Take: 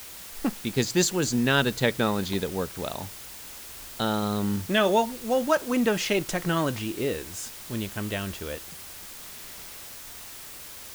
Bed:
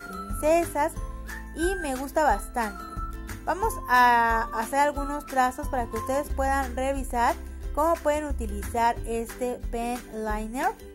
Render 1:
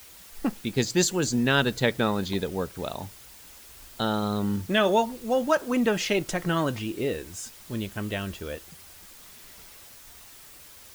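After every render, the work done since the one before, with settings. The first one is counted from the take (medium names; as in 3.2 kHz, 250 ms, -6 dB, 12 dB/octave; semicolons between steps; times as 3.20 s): noise reduction 7 dB, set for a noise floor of -42 dBFS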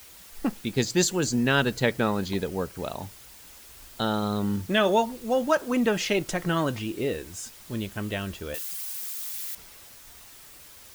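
1.23–3.01 s: band-stop 3.6 kHz; 8.54–9.55 s: tilt EQ +4 dB/octave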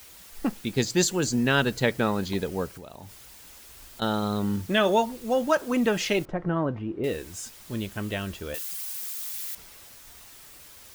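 2.67–4.02 s: compression, threshold -39 dBFS; 6.25–7.04 s: low-pass 1.1 kHz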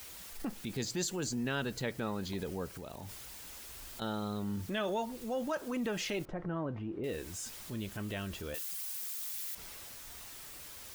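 transient shaper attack -5 dB, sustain +3 dB; compression 2:1, threshold -41 dBFS, peak gain reduction 12.5 dB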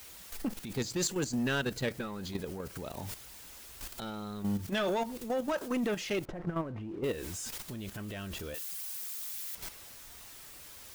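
waveshaping leveller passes 2; level held to a coarse grid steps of 10 dB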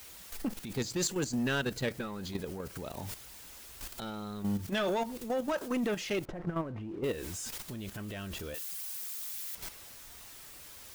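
no audible change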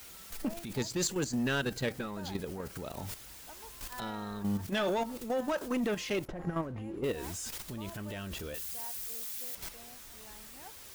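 add bed -26.5 dB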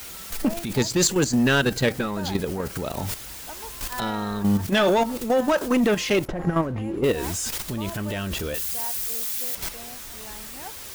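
trim +11.5 dB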